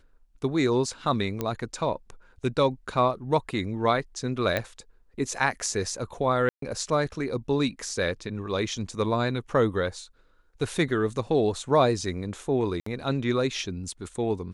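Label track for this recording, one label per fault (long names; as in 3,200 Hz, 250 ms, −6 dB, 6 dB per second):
1.410000	1.410000	click −14 dBFS
4.570000	4.570000	click −13 dBFS
6.490000	6.620000	drop-out 133 ms
12.800000	12.860000	drop-out 64 ms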